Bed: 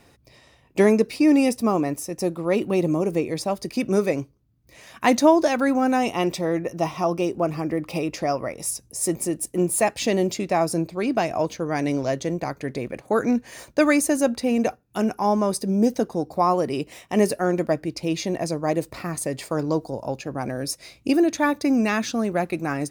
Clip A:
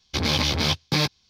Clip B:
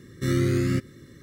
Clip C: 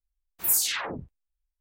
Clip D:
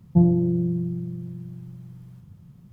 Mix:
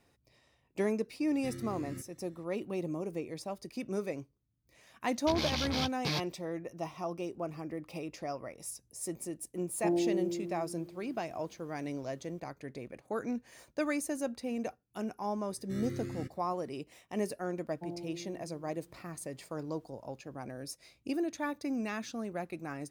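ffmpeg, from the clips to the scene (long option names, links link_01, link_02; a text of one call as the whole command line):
ffmpeg -i bed.wav -i cue0.wav -i cue1.wav -i cue2.wav -i cue3.wav -filter_complex "[2:a]asplit=2[link_01][link_02];[4:a]asplit=2[link_03][link_04];[0:a]volume=-14.5dB[link_05];[link_01]acompressor=threshold=-24dB:ratio=6:attack=3.2:release=140:knee=1:detection=peak[link_06];[link_03]highpass=frequency=330:width=0.5412,highpass=frequency=330:width=1.3066[link_07];[link_04]highpass=580[link_08];[link_06]atrim=end=1.22,asetpts=PTS-STARTPTS,volume=-15dB,afade=type=in:duration=0.004:curve=hsin,afade=type=out:start_time=1.216:duration=0.004:curve=hsin,adelay=1220[link_09];[1:a]atrim=end=1.29,asetpts=PTS-STARTPTS,volume=-11.5dB,afade=type=in:duration=0.004:curve=hsin,afade=type=out:start_time=1.286:duration=0.004:curve=hsin,adelay=226233S[link_10];[link_07]atrim=end=2.72,asetpts=PTS-STARTPTS,volume=-2dB,afade=type=in:duration=0.004:curve=hsin,afade=type=out:start_time=2.716:duration=0.004:curve=hsin,adelay=9680[link_11];[link_02]atrim=end=1.22,asetpts=PTS-STARTPTS,volume=-17dB,afade=type=in:duration=0.004:curve=hsin,afade=type=out:start_time=1.216:duration=0.004:curve=hsin,adelay=15480[link_12];[link_08]atrim=end=2.72,asetpts=PTS-STARTPTS,volume=-9dB,afade=type=in:duration=0.004:curve=hsin,afade=type=out:start_time=2.716:duration=0.004:curve=hsin,adelay=17660[link_13];[link_05][link_09][link_10][link_11][link_12][link_13]amix=inputs=6:normalize=0" out.wav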